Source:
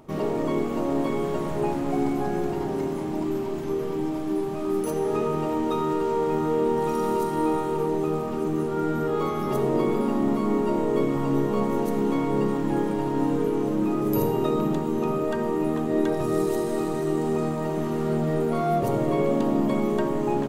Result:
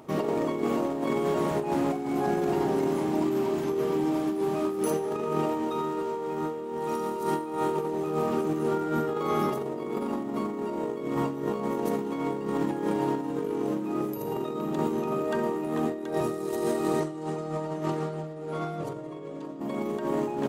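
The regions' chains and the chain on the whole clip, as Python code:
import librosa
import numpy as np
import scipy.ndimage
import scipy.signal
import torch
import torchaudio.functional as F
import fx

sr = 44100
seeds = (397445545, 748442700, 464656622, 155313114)

y = fx.chain(x, sr, fx.lowpass(hz=8700.0, slope=12),
    fx.comb(ms=6.6, depth=0.98), at=(17.0, 19.6))
y = fx.highpass(y, sr, hz=190.0, slope=6)
y = fx.over_compress(y, sr, threshold_db=-28.0, ratio=-0.5)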